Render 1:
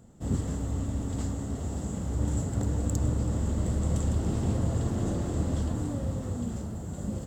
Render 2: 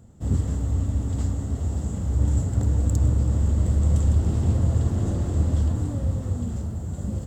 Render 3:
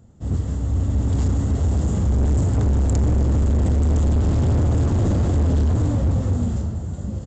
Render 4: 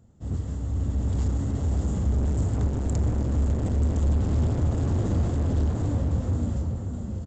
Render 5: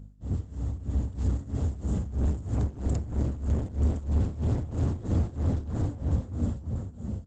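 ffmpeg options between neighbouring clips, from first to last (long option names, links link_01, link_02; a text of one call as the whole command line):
ffmpeg -i in.wav -af "equalizer=frequency=78:width=1:gain=9.5" out.wav
ffmpeg -i in.wav -af "dynaudnorm=framelen=280:gausssize=7:maxgain=12dB,aresample=16000,asoftclip=type=hard:threshold=-15.5dB,aresample=44100" out.wav
ffmpeg -i in.wav -filter_complex "[0:a]asplit=2[link_01][link_02];[link_02]adelay=548.1,volume=-6dB,highshelf=frequency=4000:gain=-12.3[link_03];[link_01][link_03]amix=inputs=2:normalize=0,volume=-6.5dB" out.wav
ffmpeg -i in.wav -af "aeval=exprs='val(0)+0.00794*(sin(2*PI*50*n/s)+sin(2*PI*2*50*n/s)/2+sin(2*PI*3*50*n/s)/3+sin(2*PI*4*50*n/s)/4+sin(2*PI*5*50*n/s)/5)':channel_layout=same,tremolo=f=3.1:d=0.84" -ar 48000 -c:a libopus -b:a 20k out.opus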